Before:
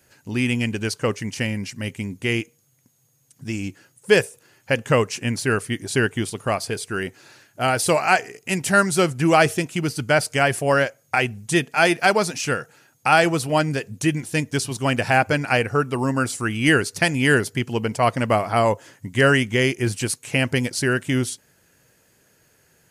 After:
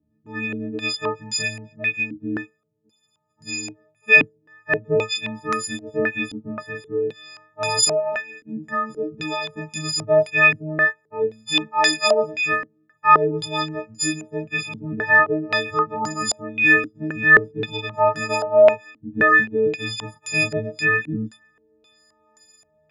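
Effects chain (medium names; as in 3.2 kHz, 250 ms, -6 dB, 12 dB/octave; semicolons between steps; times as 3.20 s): partials quantised in pitch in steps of 6 st; chorus voices 2, 0.34 Hz, delay 24 ms, depth 1.7 ms; 7.88–9.56 s: compression 10:1, threshold -20 dBFS, peak gain reduction 12 dB; step-sequenced low-pass 3.8 Hz 270–5900 Hz; trim -5 dB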